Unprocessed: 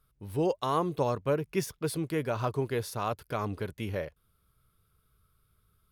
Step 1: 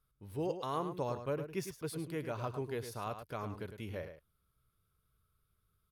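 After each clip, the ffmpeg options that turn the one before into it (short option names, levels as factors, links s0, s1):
-filter_complex "[0:a]asplit=2[s0][s1];[s1]adelay=105,volume=0.355,highshelf=f=4000:g=-2.36[s2];[s0][s2]amix=inputs=2:normalize=0,volume=0.376"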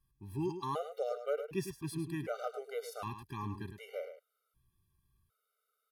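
-af "afftfilt=real='re*gt(sin(2*PI*0.66*pts/sr)*(1-2*mod(floor(b*sr/1024/390),2)),0)':imag='im*gt(sin(2*PI*0.66*pts/sr)*(1-2*mod(floor(b*sr/1024/390),2)),0)':win_size=1024:overlap=0.75,volume=1.41"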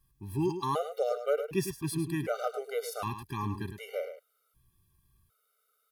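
-af "highshelf=f=7700:g=5,volume=2"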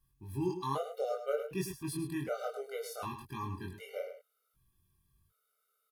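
-filter_complex "[0:a]asplit=2[s0][s1];[s1]adelay=22,volume=0.75[s2];[s0][s2]amix=inputs=2:normalize=0,volume=0.473"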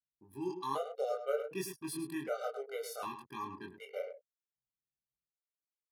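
-af "anlmdn=0.00398,dynaudnorm=f=400:g=3:m=1.5,highpass=270,volume=0.668"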